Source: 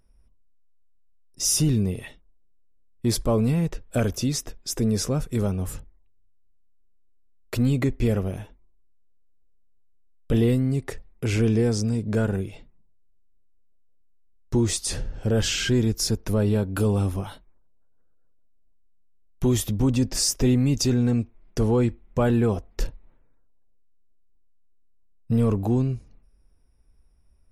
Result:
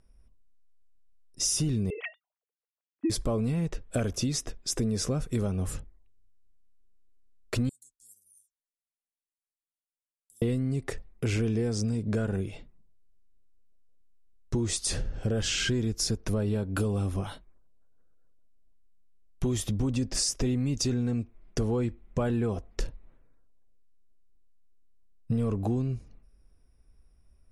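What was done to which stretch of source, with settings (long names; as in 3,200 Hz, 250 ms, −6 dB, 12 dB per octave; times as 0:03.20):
0:01.90–0:03.10: three sine waves on the formant tracks
0:07.69–0:10.42: inverse Chebyshev high-pass filter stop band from 2,600 Hz, stop band 60 dB
whole clip: Butterworth low-pass 11,000 Hz 36 dB per octave; notch filter 900 Hz, Q 14; downward compressor, threshold −25 dBFS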